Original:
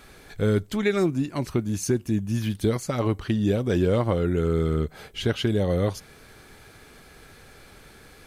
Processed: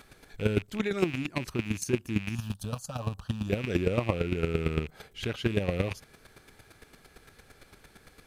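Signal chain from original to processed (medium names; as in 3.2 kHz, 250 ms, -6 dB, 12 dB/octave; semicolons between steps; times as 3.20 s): rattle on loud lows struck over -33 dBFS, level -21 dBFS; 2.35–3.50 s: static phaser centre 880 Hz, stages 4; square tremolo 8.8 Hz, depth 65%, duty 15%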